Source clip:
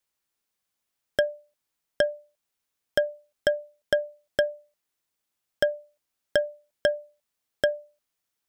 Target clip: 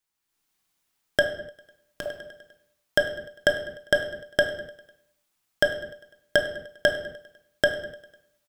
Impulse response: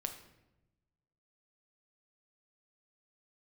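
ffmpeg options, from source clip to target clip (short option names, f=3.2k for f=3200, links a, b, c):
-filter_complex "[0:a]aecho=1:1:100|200|300|400|500:0.0944|0.0566|0.034|0.0204|0.0122,asettb=1/sr,asplit=3[a][b][c];[a]atrim=end=1.224[d];[b]atrim=start=1.22:end=2.06,asetpts=PTS-STARTPTS,afade=t=in:d=0.004:c=qsin,afade=t=out:st=0.836:d=0.004:c=qsin,acompressor=threshold=-42dB:ratio=4[e];[c]atrim=start=2.056[f];[d][e]acrossfade=d=0.004:c1=hsin:c2=qsin[g];[g][f]acrossfade=d=0.004:c1=qsin:c2=hsin[h];[1:a]atrim=start_sample=2205,afade=t=out:st=0.35:d=0.01,atrim=end_sample=15876[i];[h][i]afir=irnorm=-1:irlink=0,dynaudnorm=f=130:g=5:m=8dB,equalizer=f=540:w=4.9:g=-8.5"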